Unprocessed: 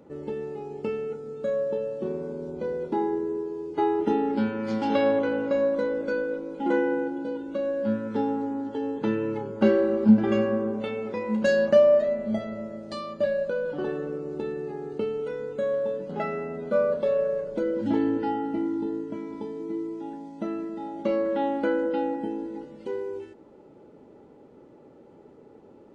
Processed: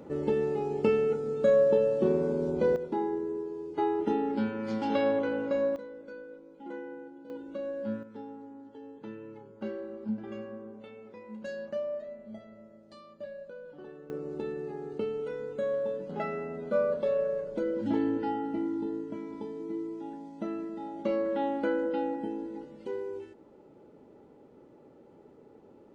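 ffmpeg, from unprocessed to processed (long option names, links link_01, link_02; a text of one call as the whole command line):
ffmpeg -i in.wav -af "asetnsamples=nb_out_samples=441:pad=0,asendcmd='2.76 volume volume -4.5dB;5.76 volume volume -17dB;7.3 volume volume -8dB;8.03 volume volume -17dB;14.1 volume volume -4dB',volume=5dB" out.wav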